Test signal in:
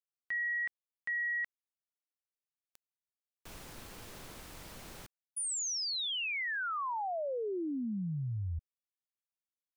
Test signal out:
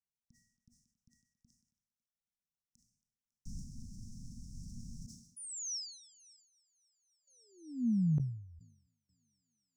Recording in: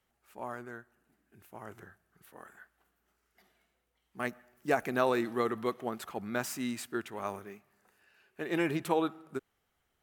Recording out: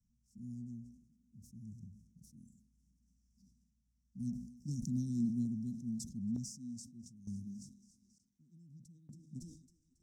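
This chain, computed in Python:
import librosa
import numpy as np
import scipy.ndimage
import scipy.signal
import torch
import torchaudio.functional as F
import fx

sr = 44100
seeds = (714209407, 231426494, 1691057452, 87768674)

y = scipy.signal.sosfilt(scipy.signal.cheby1(5, 1.0, [240.0, 5500.0], 'bandstop', fs=sr, output='sos'), x)
y = fx.echo_thinned(y, sr, ms=276, feedback_pct=81, hz=290.0, wet_db=-21.0)
y = fx.dynamic_eq(y, sr, hz=300.0, q=1.8, threshold_db=-53.0, ratio=4.0, max_db=-3)
y = fx.tremolo_random(y, sr, seeds[0], hz=1.1, depth_pct=95)
y = fx.air_absorb(y, sr, metres=130.0)
y = fx.sustainer(y, sr, db_per_s=80.0)
y = y * 10.0 ** (9.5 / 20.0)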